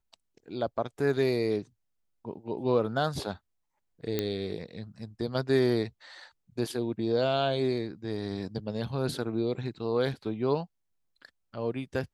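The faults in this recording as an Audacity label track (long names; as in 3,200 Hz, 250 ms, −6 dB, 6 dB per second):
4.190000	4.190000	click −14 dBFS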